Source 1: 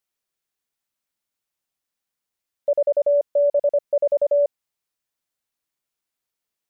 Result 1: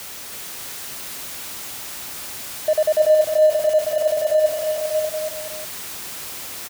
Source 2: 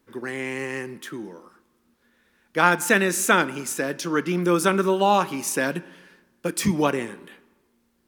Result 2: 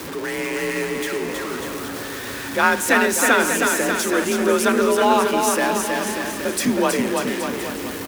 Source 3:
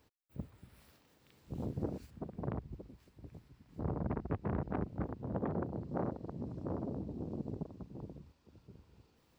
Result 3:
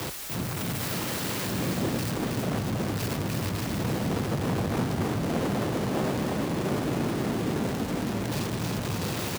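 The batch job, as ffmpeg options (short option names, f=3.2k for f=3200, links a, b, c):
-af "aeval=exprs='val(0)+0.5*0.0473*sgn(val(0))':c=same,afreqshift=43,aecho=1:1:320|592|823.2|1020|1187:0.631|0.398|0.251|0.158|0.1"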